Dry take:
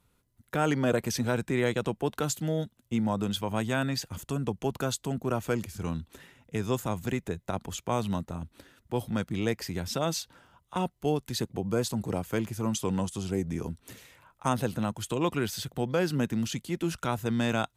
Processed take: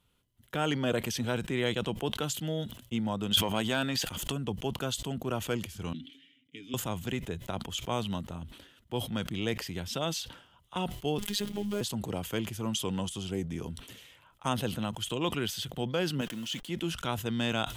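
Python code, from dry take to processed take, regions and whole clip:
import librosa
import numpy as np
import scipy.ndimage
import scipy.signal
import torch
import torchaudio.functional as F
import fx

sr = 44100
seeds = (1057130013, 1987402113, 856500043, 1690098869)

y = fx.chain(x, sr, fx.leveller(passes=1),
    fx.peak_eq(hz=100.0, db=-7.5, octaves=1.5),
    fx.pre_swell(db_per_s=38.0), at=(3.31, 4.32))
y = fx.chain(y, sr, fx.vowel_filter(vowel='i'),
    fx.high_shelf(hz=3500.0, db=11.0),
    fx.comb(ms=7.0, depth=0.56), at=(5.93, 6.74))
y = fx.chain(y, sr, fx.block_float(bits=5),
    fx.robotise(hz=205.0),
    fx.env_flatten(amount_pct=70), at=(11.18, 11.81))
y = fx.chain(y, sr, fx.delta_hold(step_db=-44.0),
    fx.peak_eq(hz=67.0, db=-14.5, octaves=2.7),
    fx.notch_comb(f0_hz=400.0), at=(16.21, 16.68))
y = fx.peak_eq(y, sr, hz=3100.0, db=12.0, octaves=0.41)
y = fx.sustainer(y, sr, db_per_s=95.0)
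y = y * librosa.db_to_amplitude(-4.0)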